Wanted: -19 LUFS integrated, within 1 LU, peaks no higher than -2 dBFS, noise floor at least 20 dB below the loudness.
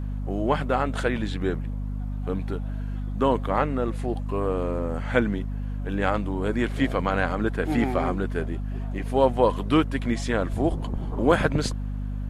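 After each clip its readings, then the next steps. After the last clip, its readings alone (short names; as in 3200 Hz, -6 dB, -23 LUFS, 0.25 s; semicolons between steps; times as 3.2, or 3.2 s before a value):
hum 50 Hz; harmonics up to 250 Hz; hum level -27 dBFS; loudness -26.0 LUFS; peak -5.0 dBFS; loudness target -19.0 LUFS
-> de-hum 50 Hz, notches 5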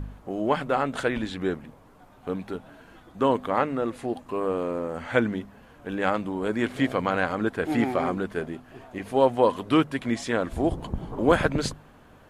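hum none; loudness -26.5 LUFS; peak -5.5 dBFS; loudness target -19.0 LUFS
-> gain +7.5 dB; limiter -2 dBFS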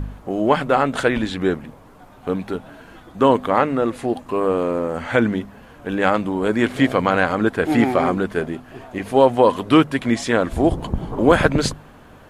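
loudness -19.5 LUFS; peak -2.0 dBFS; noise floor -45 dBFS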